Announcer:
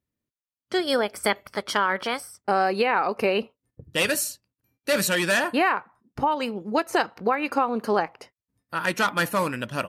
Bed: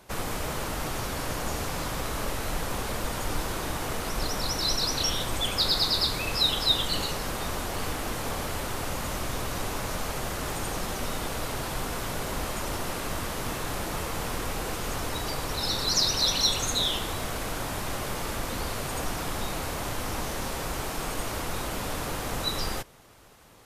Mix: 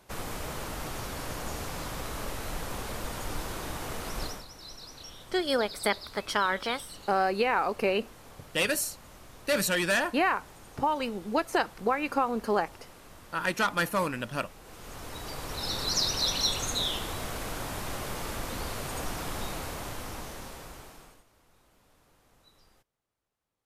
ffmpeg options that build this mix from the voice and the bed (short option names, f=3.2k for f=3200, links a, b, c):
-filter_complex "[0:a]adelay=4600,volume=-4dB[a];[1:a]volume=10.5dB,afade=t=out:st=4.23:d=0.22:silence=0.199526,afade=t=in:st=14.62:d=1.2:silence=0.16788,afade=t=out:st=19.44:d=1.8:silence=0.0354813[b];[a][b]amix=inputs=2:normalize=0"